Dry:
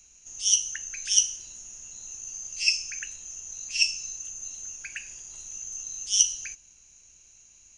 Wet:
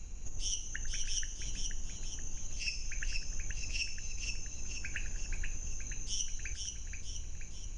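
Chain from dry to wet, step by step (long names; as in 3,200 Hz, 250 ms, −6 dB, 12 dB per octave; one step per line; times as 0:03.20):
spectral tilt −4 dB per octave
downward compressor 5 to 1, threshold −43 dBFS, peak gain reduction 17.5 dB
echo with a time of its own for lows and highs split 1,400 Hz, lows 100 ms, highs 478 ms, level −4.5 dB
level +8 dB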